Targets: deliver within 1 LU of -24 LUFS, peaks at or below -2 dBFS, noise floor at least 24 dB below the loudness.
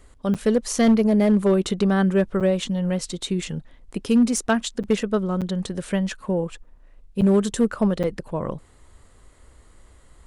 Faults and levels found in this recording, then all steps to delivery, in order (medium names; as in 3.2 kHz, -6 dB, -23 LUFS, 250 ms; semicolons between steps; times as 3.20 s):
clipped samples 0.6%; clipping level -11.5 dBFS; dropouts 6; longest dropout 7.3 ms; loudness -22.0 LUFS; peak level -11.5 dBFS; loudness target -24.0 LUFS
-> clip repair -11.5 dBFS; interpolate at 0.34/2.40/4.83/5.41/7.21/8.03 s, 7.3 ms; trim -2 dB